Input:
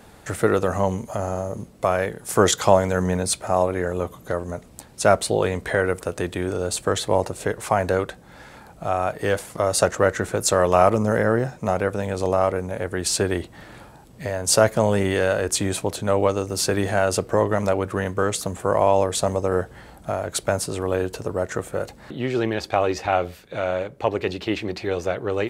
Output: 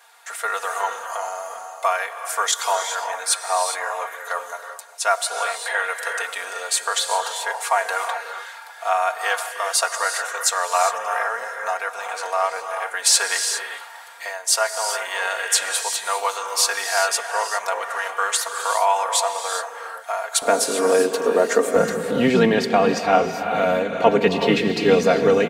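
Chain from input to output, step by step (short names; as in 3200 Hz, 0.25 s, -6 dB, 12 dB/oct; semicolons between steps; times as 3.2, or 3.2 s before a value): octaver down 1 oct, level -5 dB; comb 4.3 ms, depth 77%; non-linear reverb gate 0.43 s rising, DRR 5.5 dB; AGC gain up to 11.5 dB; HPF 810 Hz 24 dB/oct, from 20.42 s 280 Hz, from 21.76 s 120 Hz; gain -1 dB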